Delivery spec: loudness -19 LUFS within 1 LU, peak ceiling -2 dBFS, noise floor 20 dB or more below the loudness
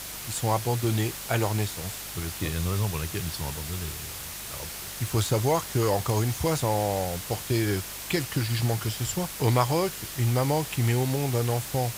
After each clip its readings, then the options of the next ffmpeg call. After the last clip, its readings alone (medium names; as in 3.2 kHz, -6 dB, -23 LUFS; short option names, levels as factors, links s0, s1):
hum 50 Hz; highest harmonic 200 Hz; hum level -49 dBFS; noise floor -38 dBFS; noise floor target -48 dBFS; loudness -27.5 LUFS; peak level -9.5 dBFS; loudness target -19.0 LUFS
-> -af "bandreject=f=50:t=h:w=4,bandreject=f=100:t=h:w=4,bandreject=f=150:t=h:w=4,bandreject=f=200:t=h:w=4"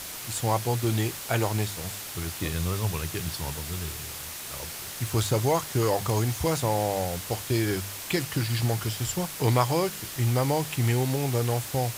hum not found; noise floor -38 dBFS; noise floor target -48 dBFS
-> -af "afftdn=nr=10:nf=-38"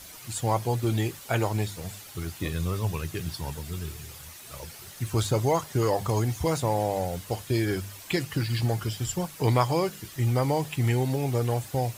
noise floor -45 dBFS; noise floor target -48 dBFS
-> -af "afftdn=nr=6:nf=-45"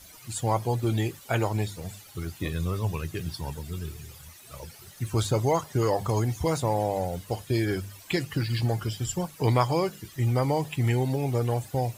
noise floor -49 dBFS; loudness -28.0 LUFS; peak level -9.5 dBFS; loudness target -19.0 LUFS
-> -af "volume=2.82,alimiter=limit=0.794:level=0:latency=1"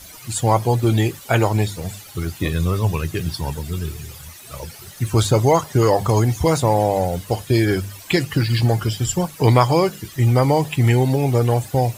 loudness -19.0 LUFS; peak level -2.0 dBFS; noise floor -40 dBFS